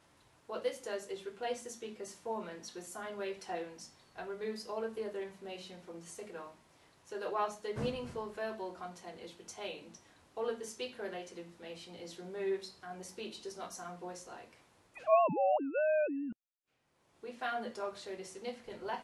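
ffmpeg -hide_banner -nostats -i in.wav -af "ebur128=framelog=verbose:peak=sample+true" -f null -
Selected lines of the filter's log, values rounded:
Integrated loudness:
  I:         -38.9 LUFS
  Threshold: -49.4 LUFS
Loudness range:
  LRA:         9.5 LU
  Threshold: -59.2 LUFS
  LRA low:   -43.7 LUFS
  LRA high:  -34.1 LUFS
Sample peak:
  Peak:      -16.5 dBFS
True peak:
  Peak:      -16.5 dBFS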